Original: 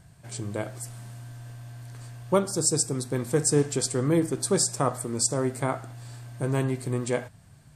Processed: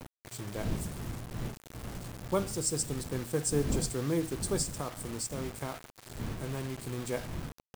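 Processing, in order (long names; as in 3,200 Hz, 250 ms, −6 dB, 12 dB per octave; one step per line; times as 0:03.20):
wind on the microphone 180 Hz −32 dBFS
0:04.62–0:06.98: downward compressor 4 to 1, threshold −26 dBFS, peak gain reduction 7 dB
bit reduction 6 bits
level −7.5 dB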